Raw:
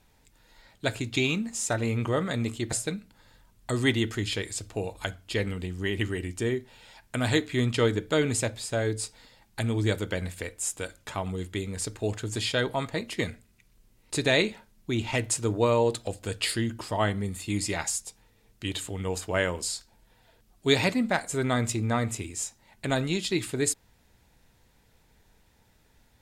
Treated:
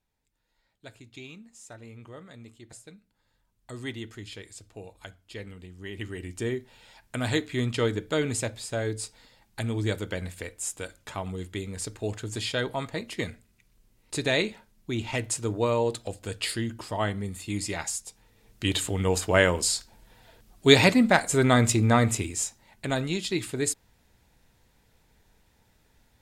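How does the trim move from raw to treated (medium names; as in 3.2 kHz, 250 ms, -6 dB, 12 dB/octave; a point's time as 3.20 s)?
2.79 s -18 dB
3.80 s -11.5 dB
5.75 s -11.5 dB
6.41 s -2 dB
18.03 s -2 dB
18.68 s +6 dB
22.14 s +6 dB
22.89 s -1 dB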